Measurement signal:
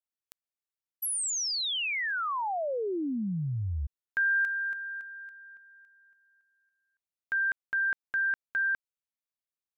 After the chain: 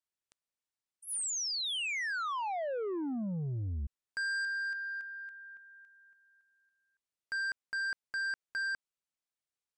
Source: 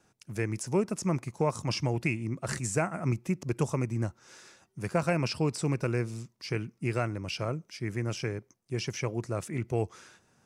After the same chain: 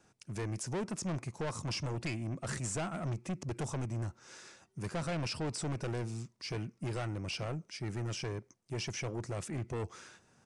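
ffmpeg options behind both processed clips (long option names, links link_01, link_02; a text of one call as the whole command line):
ffmpeg -i in.wav -af "asoftclip=type=tanh:threshold=-32.5dB,aresample=22050,aresample=44100" out.wav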